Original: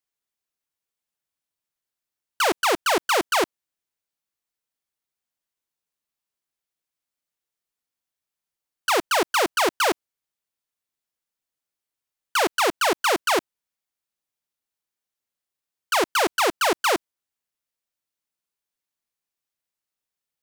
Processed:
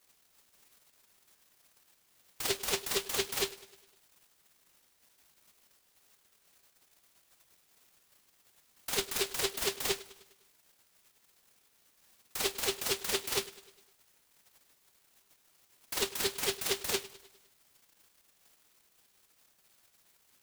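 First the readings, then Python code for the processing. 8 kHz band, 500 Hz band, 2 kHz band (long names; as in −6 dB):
−5.0 dB, −13.0 dB, −14.5 dB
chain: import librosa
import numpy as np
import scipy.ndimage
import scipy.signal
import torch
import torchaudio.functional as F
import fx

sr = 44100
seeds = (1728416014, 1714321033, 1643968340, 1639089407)

p1 = x + 0.5 * 10.0 ** (-25.5 / 20.0) * np.diff(np.sign(x), prepend=np.sign(x[:1]))
p2 = scipy.signal.sosfilt(scipy.signal.butter(2, 360.0, 'highpass', fs=sr, output='sos'), p1)
p3 = fx.peak_eq(p2, sr, hz=790.0, db=-6.5, octaves=0.77)
p4 = fx.level_steps(p3, sr, step_db=23)
p5 = p3 + F.gain(torch.from_numpy(p4), -0.5).numpy()
p6 = fx.octave_resonator(p5, sr, note='G', decay_s=0.15)
p7 = p6 + fx.echo_feedback(p6, sr, ms=102, feedback_pct=54, wet_db=-18.5, dry=0)
y = fx.noise_mod_delay(p7, sr, seeds[0], noise_hz=3400.0, depth_ms=0.39)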